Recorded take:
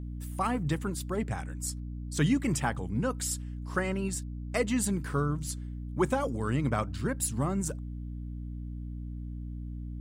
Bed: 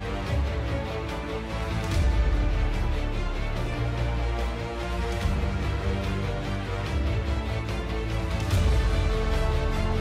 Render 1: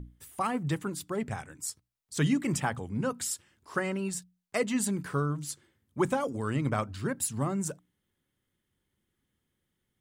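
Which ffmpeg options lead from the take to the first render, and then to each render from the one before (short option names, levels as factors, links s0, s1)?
-af "bandreject=f=60:t=h:w=6,bandreject=f=120:t=h:w=6,bandreject=f=180:t=h:w=6,bandreject=f=240:t=h:w=6,bandreject=f=300:t=h:w=6"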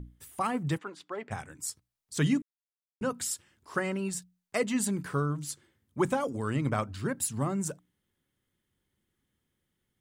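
-filter_complex "[0:a]asplit=3[s0][s1][s2];[s0]afade=t=out:st=0.77:d=0.02[s3];[s1]highpass=490,lowpass=3300,afade=t=in:st=0.77:d=0.02,afade=t=out:st=1.3:d=0.02[s4];[s2]afade=t=in:st=1.3:d=0.02[s5];[s3][s4][s5]amix=inputs=3:normalize=0,asplit=3[s6][s7][s8];[s6]atrim=end=2.42,asetpts=PTS-STARTPTS,afade=t=out:st=2.416:d=0.004:c=hsin[s9];[s7]atrim=start=2.42:end=3.01,asetpts=PTS-STARTPTS,volume=0[s10];[s8]atrim=start=3.01,asetpts=PTS-STARTPTS,afade=t=in:d=0.004:c=hsin[s11];[s9][s10][s11]concat=n=3:v=0:a=1"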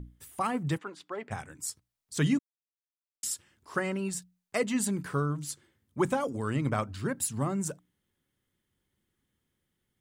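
-filter_complex "[0:a]asplit=3[s0][s1][s2];[s0]atrim=end=2.39,asetpts=PTS-STARTPTS,afade=t=out:st=2.386:d=0.004:c=hsin[s3];[s1]atrim=start=2.39:end=3.23,asetpts=PTS-STARTPTS,volume=0[s4];[s2]atrim=start=3.23,asetpts=PTS-STARTPTS,afade=t=in:d=0.004:c=hsin[s5];[s3][s4][s5]concat=n=3:v=0:a=1"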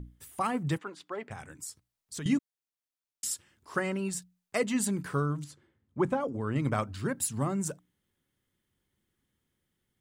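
-filter_complex "[0:a]asettb=1/sr,asplit=3[s0][s1][s2];[s0]atrim=end=1.304[s3];[s1]atrim=start=1.3:end=2.26,asetpts=PTS-STARTPTS,afade=t=in:d=0.004:c=qsin,afade=t=out:st=0.956:d=0.004:c=qsin,acompressor=threshold=0.0158:ratio=6:attack=3.2:release=140:knee=1:detection=peak[s4];[s2]atrim=start=2.256[s5];[s3][s4]acrossfade=d=0.004:c1=hsin:c2=qsin[s6];[s6][s5]acrossfade=d=0.004:c1=qsin:c2=hsin,asettb=1/sr,asplit=3[s7][s8][s9];[s7]atrim=end=5.444[s10];[s8]atrim=start=5.44:end=6.56,asetpts=PTS-STARTPTS,afade=t=in:d=0.004:c=qsin,afade=t=out:st=1.116:d=0.004:c=qsin,lowpass=f=1400:p=1[s11];[s9]atrim=start=6.556[s12];[s10][s11]acrossfade=d=0.004:c1=hsin:c2=qsin[s13];[s13][s12]acrossfade=d=0.004:c1=qsin:c2=hsin"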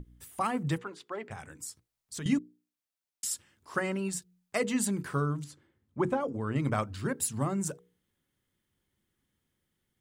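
-af "bandreject=f=60:t=h:w=6,bandreject=f=120:t=h:w=6,bandreject=f=180:t=h:w=6,bandreject=f=240:t=h:w=6,bandreject=f=300:t=h:w=6,bandreject=f=360:t=h:w=6,bandreject=f=420:t=h:w=6,bandreject=f=480:t=h:w=6"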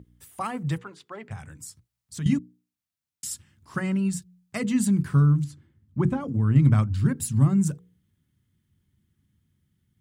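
-af "highpass=86,asubboost=boost=12:cutoff=150"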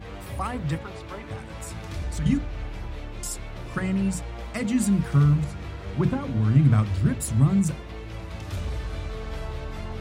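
-filter_complex "[1:a]volume=0.398[s0];[0:a][s0]amix=inputs=2:normalize=0"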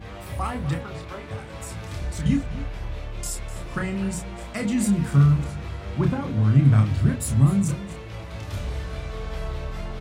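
-filter_complex "[0:a]asplit=2[s0][s1];[s1]adelay=29,volume=0.562[s2];[s0][s2]amix=inputs=2:normalize=0,aecho=1:1:251:0.168"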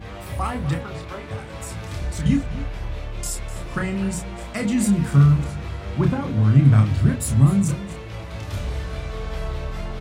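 -af "volume=1.33"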